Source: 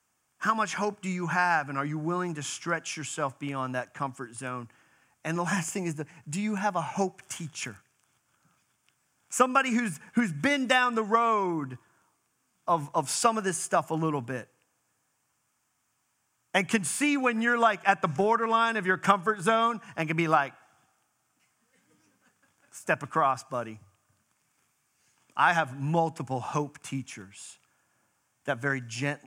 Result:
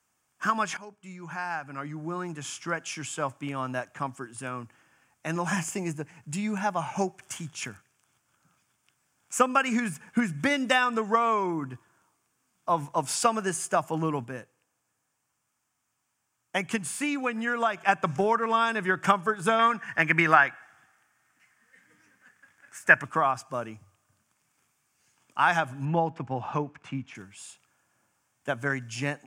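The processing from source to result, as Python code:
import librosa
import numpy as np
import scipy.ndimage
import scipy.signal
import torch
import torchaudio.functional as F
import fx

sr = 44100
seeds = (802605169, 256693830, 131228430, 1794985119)

y = fx.peak_eq(x, sr, hz=1800.0, db=15.0, octaves=0.69, at=(19.59, 23.03))
y = fx.lowpass(y, sr, hz=3000.0, slope=12, at=(25.85, 27.15))
y = fx.edit(y, sr, fx.fade_in_from(start_s=0.77, length_s=2.3, floor_db=-18.0),
    fx.clip_gain(start_s=14.24, length_s=3.53, db=-3.5), tone=tone)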